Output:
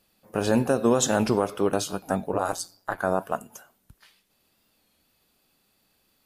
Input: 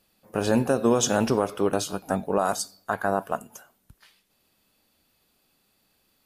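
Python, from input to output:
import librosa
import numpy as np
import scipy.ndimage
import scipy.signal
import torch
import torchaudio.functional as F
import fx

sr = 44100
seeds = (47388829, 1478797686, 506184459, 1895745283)

y = fx.ring_mod(x, sr, carrier_hz=88.0, at=(2.32, 2.98), fade=0.02)
y = fx.record_warp(y, sr, rpm=33.33, depth_cents=100.0)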